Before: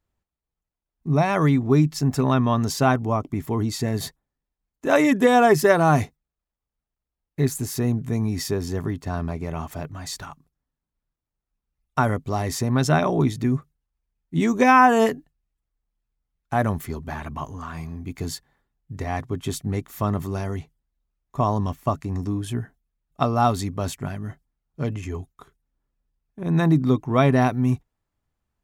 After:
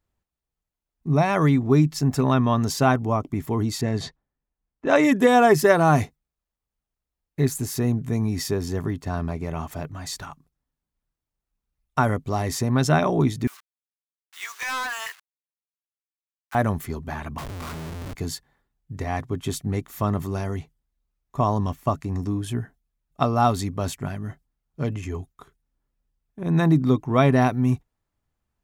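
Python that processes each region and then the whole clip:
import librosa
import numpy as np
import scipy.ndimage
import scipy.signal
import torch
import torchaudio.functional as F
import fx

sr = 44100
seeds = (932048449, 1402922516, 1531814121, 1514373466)

y = fx.chain(x, sr, fx.env_lowpass(base_hz=2000.0, full_db=-19.5),
    fx.lowpass(hz=6300.0, slope=12), at=(3.81, 5.03))
y = fx.chain(y, sr, fx.delta_hold(step_db=-37.5),
    fx.highpass(hz=1200.0, slope=24),
    fx.clip_hard(threshold_db=-26.0), at=(13.47, 16.55))
y = fx.chain(y, sr, fx.air_absorb(metres=230.0),
    fx.schmitt(flips_db=-42.5), at=(17.38, 18.15))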